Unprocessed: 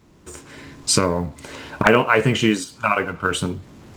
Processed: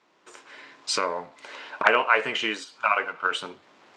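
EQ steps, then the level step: BPF 660–4200 Hz; -2.0 dB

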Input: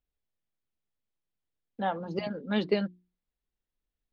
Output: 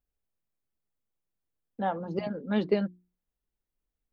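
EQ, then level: bell 4200 Hz -7.5 dB 2.5 oct; +1.5 dB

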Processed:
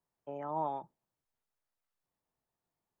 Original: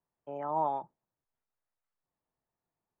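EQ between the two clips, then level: dynamic EQ 850 Hz, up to -5 dB, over -42 dBFS, Q 0.74; 0.0 dB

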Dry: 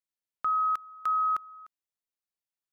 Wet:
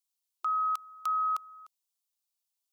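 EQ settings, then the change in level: brick-wall FIR high-pass 360 Hz; tilt shelf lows -8.5 dB; fixed phaser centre 470 Hz, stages 6; +1.0 dB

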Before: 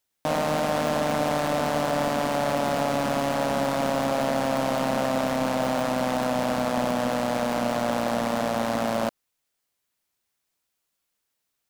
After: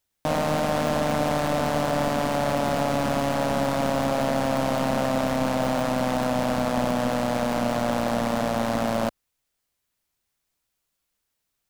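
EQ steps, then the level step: low shelf 100 Hz +11.5 dB; 0.0 dB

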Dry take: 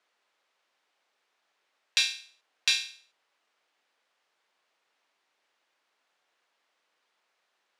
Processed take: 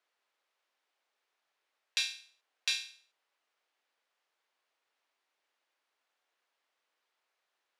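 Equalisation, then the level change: HPF 230 Hz; bell 11000 Hz +3.5 dB 0.28 oct; -7.0 dB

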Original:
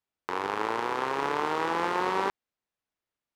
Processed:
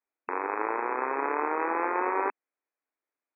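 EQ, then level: brick-wall FIR band-pass 240–2600 Hz; 0.0 dB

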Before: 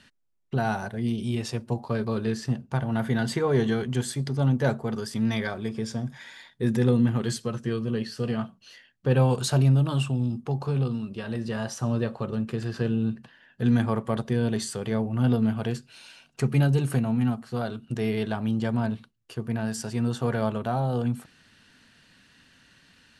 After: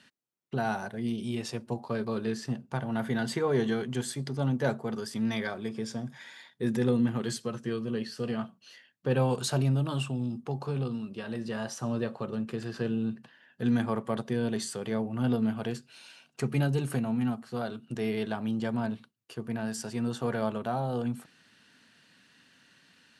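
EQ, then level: HPF 150 Hz 12 dB/oct; -3.0 dB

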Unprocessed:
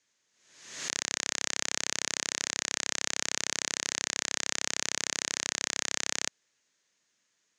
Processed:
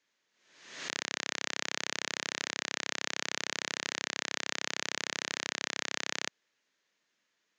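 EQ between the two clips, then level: BPF 170–4100 Hz; 0.0 dB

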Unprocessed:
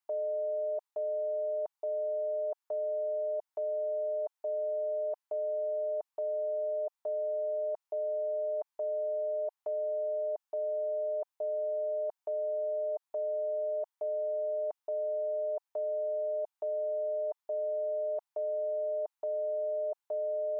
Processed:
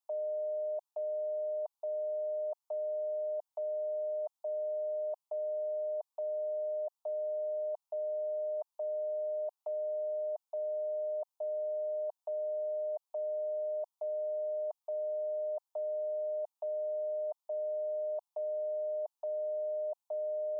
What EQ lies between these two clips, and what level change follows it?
HPF 540 Hz 24 dB/oct; fixed phaser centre 760 Hz, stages 4; 0.0 dB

